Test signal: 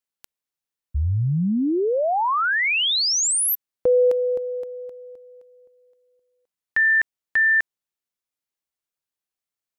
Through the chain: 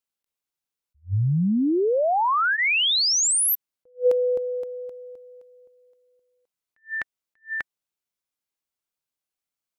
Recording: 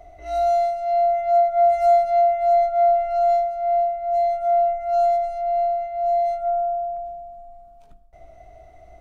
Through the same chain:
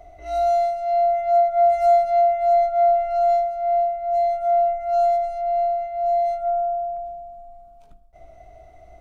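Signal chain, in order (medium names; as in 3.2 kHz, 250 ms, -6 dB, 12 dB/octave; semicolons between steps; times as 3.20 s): band-stop 1.8 kHz, Q 14; attacks held to a fixed rise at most 330 dB/s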